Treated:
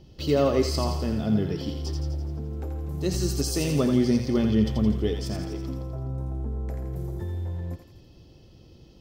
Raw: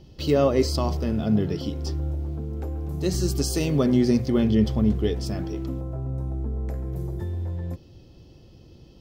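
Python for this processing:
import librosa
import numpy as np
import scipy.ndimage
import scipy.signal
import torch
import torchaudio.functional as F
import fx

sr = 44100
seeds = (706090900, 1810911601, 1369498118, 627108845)

y = fx.echo_thinned(x, sr, ms=84, feedback_pct=60, hz=940.0, wet_db=-4.5)
y = y * librosa.db_to_amplitude(-2.0)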